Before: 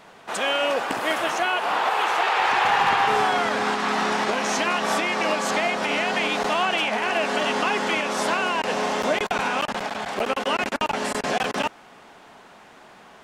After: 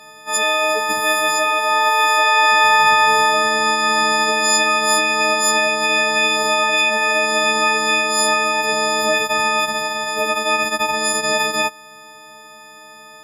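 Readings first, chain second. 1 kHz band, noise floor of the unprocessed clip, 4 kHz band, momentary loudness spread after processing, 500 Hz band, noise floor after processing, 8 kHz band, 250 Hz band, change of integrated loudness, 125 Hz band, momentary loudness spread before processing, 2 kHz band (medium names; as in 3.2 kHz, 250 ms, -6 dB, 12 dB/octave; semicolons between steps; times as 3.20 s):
+5.5 dB, -49 dBFS, +8.5 dB, 6 LU, +4.0 dB, -41 dBFS, +13.5 dB, +1.0 dB, +7.5 dB, -1.0 dB, 6 LU, +8.0 dB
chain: partials quantised in pitch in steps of 6 st; Opus 128 kbps 48 kHz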